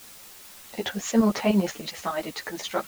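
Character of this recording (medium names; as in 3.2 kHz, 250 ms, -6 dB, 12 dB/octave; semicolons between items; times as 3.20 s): tremolo saw up 10 Hz, depth 75%; a quantiser's noise floor 8-bit, dither triangular; a shimmering, thickened sound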